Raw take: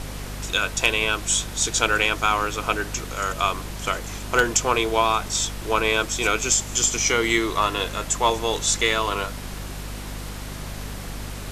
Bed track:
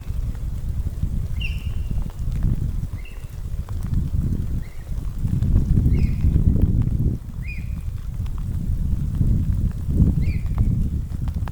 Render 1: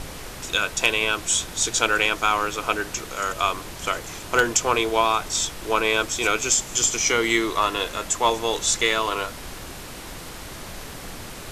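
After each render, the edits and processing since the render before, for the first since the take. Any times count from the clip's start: de-hum 50 Hz, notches 5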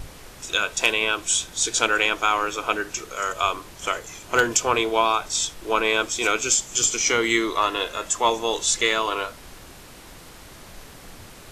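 noise print and reduce 7 dB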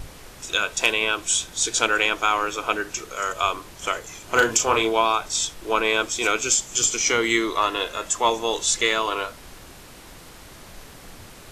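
4.24–4.93 s: doubling 36 ms -5.5 dB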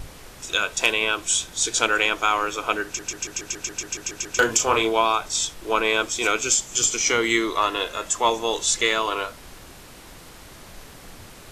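2.85 s: stutter in place 0.14 s, 11 plays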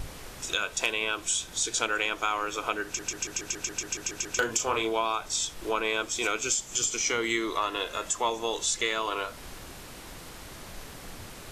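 compression 2:1, threshold -30 dBFS, peak gain reduction 9 dB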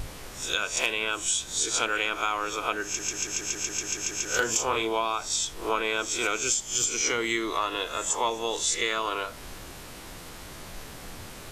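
reverse spectral sustain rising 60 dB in 0.36 s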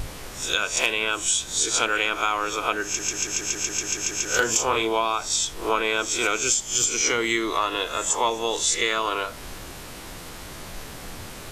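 trim +4 dB

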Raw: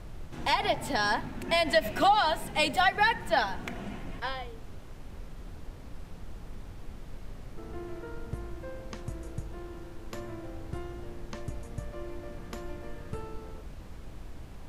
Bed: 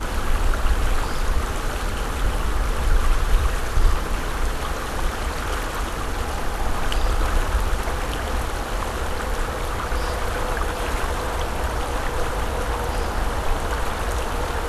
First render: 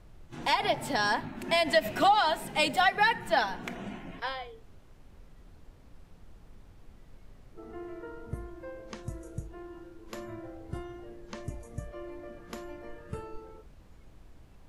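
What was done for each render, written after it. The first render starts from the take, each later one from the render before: noise print and reduce 10 dB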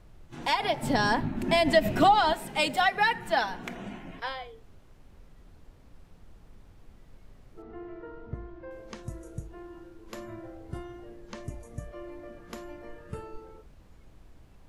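0.83–2.33 s: bass shelf 390 Hz +12 dB; 7.62–8.71 s: distance through air 200 m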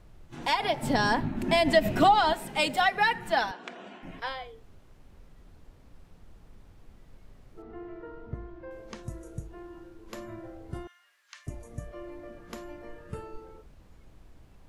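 3.51–4.03 s: cabinet simulation 390–7200 Hz, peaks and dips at 840 Hz -3 dB, 2.1 kHz -6 dB, 6.3 kHz -6 dB; 10.87–11.47 s: high-pass 1.4 kHz 24 dB/octave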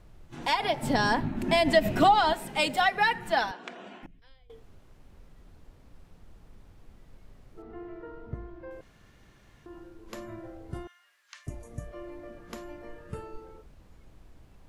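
4.06–4.50 s: amplifier tone stack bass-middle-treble 10-0-1; 8.81–9.66 s: room tone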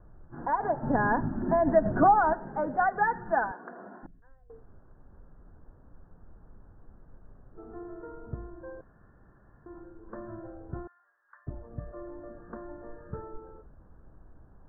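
steep low-pass 1.7 kHz 96 dB/octave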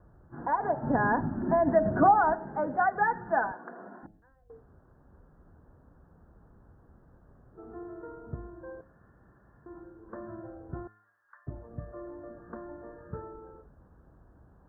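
high-pass 51 Hz; de-hum 106.5 Hz, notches 8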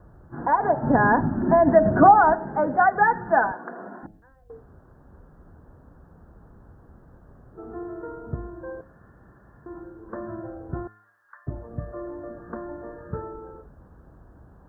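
trim +7.5 dB

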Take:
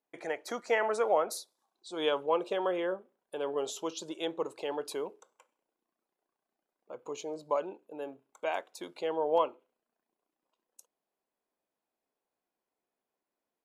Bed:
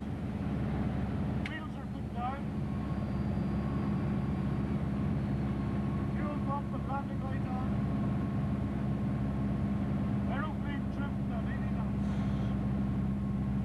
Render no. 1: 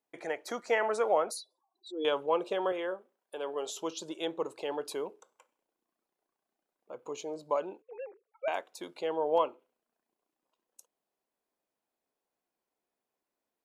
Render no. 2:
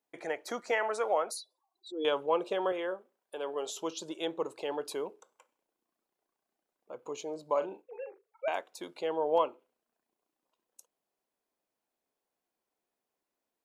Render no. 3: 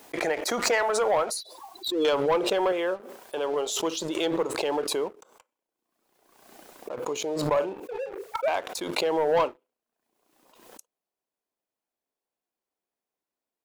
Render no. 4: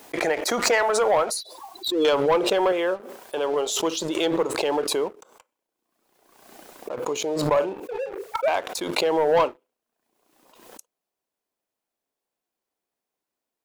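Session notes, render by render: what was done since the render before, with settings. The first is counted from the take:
1.31–2.05 s: spectral contrast enhancement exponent 2.6; 2.72–3.77 s: high-pass 430 Hz 6 dB/octave; 7.82–8.48 s: formants replaced by sine waves
0.71–1.92 s: bass shelf 320 Hz -10 dB; 7.52–8.45 s: doubling 42 ms -9 dB
waveshaping leveller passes 2; swell ahead of each attack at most 46 dB/s
trim +3.5 dB

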